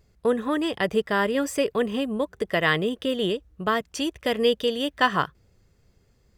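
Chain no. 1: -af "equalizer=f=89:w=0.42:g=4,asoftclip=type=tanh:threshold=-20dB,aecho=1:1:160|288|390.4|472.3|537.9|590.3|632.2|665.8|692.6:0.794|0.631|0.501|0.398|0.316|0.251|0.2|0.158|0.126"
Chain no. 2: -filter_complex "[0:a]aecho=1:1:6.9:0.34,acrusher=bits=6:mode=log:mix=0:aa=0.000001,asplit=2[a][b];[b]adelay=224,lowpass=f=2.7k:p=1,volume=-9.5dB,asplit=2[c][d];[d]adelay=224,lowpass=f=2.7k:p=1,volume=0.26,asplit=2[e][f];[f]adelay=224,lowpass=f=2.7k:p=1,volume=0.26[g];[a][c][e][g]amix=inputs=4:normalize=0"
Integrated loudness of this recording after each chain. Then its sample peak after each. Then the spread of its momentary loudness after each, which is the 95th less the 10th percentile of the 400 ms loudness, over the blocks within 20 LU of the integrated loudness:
-23.5, -24.0 LUFS; -11.5, -7.0 dBFS; 5, 6 LU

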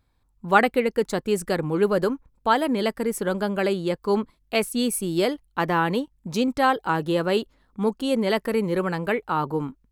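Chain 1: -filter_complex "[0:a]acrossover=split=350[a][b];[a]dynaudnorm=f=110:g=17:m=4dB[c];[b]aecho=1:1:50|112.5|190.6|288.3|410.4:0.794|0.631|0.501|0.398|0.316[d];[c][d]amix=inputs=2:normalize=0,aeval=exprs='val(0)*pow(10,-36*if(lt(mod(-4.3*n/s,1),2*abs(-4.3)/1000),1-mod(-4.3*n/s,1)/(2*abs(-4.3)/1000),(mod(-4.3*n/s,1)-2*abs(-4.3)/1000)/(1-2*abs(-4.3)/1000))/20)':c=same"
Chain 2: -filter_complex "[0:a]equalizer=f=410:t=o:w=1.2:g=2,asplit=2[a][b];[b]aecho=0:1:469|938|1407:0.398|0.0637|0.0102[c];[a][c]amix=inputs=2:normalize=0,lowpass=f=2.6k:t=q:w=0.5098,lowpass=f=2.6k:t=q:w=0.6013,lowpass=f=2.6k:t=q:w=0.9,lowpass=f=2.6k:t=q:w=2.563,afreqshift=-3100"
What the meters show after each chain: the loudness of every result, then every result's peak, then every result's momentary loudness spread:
-29.0, -19.5 LUFS; -5.0, -1.0 dBFS; 9, 5 LU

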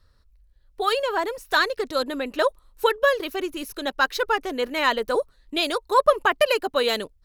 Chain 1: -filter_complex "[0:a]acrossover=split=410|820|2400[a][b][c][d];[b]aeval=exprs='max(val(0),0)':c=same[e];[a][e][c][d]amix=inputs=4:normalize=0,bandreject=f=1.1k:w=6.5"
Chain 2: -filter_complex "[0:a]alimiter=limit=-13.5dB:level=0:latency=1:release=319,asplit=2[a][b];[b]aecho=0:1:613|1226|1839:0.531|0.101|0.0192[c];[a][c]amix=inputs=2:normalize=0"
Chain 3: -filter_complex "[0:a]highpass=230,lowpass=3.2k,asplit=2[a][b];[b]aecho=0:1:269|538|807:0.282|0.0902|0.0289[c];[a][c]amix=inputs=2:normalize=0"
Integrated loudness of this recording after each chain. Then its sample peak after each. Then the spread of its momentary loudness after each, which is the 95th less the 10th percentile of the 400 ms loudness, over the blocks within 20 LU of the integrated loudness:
-25.5, -26.0, -24.0 LUFS; -5.0, -10.0, -4.0 dBFS; 7, 4, 8 LU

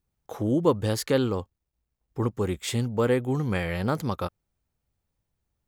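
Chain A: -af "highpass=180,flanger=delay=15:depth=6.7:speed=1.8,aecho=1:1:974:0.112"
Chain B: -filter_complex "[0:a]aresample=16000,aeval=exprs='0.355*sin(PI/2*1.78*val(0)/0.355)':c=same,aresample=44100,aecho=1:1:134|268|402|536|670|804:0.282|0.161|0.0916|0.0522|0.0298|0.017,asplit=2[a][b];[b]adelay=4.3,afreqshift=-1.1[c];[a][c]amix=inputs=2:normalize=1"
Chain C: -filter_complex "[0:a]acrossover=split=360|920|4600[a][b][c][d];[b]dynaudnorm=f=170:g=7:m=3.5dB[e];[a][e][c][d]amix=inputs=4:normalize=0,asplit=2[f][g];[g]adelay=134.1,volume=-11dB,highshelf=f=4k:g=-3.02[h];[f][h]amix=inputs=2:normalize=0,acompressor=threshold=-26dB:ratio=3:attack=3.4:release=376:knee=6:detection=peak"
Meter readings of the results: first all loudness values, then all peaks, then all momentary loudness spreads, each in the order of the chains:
-31.0, -22.0, -31.5 LUFS; -10.0, -6.5, -17.0 dBFS; 18, 18, 13 LU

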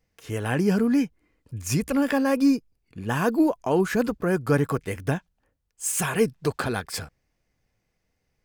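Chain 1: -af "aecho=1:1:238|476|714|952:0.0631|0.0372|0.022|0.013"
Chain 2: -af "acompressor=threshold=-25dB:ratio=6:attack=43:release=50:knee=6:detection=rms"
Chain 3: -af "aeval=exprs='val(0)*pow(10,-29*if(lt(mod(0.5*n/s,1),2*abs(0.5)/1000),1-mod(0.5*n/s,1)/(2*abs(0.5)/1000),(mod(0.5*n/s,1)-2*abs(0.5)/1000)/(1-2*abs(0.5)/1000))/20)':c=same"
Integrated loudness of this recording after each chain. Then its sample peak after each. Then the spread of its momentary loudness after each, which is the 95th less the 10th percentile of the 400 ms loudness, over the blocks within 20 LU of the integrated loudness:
-25.0, -28.5, -30.5 LUFS; -10.0, -12.0, -10.0 dBFS; 12, 9, 20 LU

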